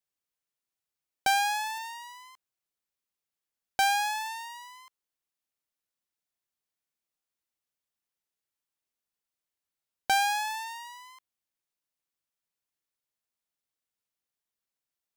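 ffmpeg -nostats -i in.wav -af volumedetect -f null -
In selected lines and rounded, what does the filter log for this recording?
mean_volume: -36.9 dB
max_volume: -17.0 dB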